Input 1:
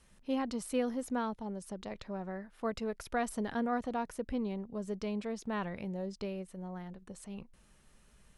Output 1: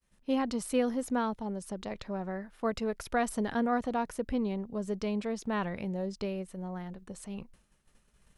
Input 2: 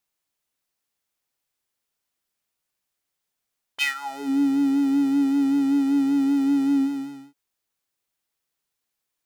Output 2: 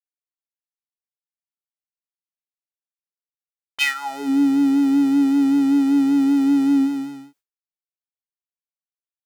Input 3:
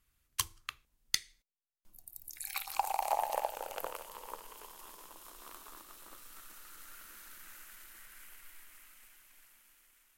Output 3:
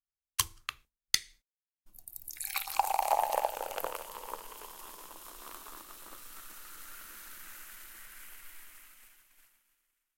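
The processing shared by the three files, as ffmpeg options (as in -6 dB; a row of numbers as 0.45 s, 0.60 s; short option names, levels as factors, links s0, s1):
-af "agate=range=0.0224:threshold=0.002:ratio=3:detection=peak,volume=1.58"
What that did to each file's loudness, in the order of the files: +4.0 LU, +4.0 LU, +4.0 LU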